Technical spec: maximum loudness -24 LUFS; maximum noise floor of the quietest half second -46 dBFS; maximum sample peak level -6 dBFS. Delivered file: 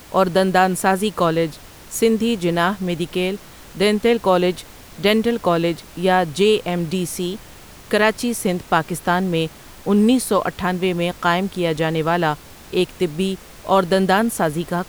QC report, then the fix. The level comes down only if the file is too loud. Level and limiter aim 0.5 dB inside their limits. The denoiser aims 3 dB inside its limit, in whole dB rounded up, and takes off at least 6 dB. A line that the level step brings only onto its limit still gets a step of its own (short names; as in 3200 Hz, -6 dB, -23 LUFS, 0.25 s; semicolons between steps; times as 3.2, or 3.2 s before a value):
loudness -19.5 LUFS: fail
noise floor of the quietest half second -41 dBFS: fail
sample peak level -4.0 dBFS: fail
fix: denoiser 6 dB, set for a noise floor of -41 dBFS; gain -5 dB